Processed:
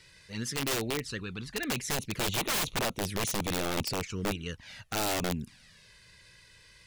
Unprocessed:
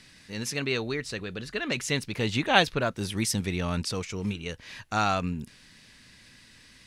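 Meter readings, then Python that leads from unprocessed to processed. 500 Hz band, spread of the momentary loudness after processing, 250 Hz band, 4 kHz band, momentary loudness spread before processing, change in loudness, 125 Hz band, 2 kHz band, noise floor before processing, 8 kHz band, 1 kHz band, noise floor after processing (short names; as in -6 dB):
-4.0 dB, 9 LU, -4.5 dB, -2.5 dB, 14 LU, -3.5 dB, -5.0 dB, -5.5 dB, -55 dBFS, +1.5 dB, -6.5 dB, -58 dBFS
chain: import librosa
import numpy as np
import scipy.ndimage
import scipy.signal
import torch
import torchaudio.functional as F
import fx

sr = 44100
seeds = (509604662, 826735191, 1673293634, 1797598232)

y = fx.env_flanger(x, sr, rest_ms=2.2, full_db=-25.5)
y = fx.cheby_harmonics(y, sr, harmonics=(4,), levels_db=(-31,), full_scale_db=-7.5)
y = (np.mod(10.0 ** (24.0 / 20.0) * y + 1.0, 2.0) - 1.0) / 10.0 ** (24.0 / 20.0)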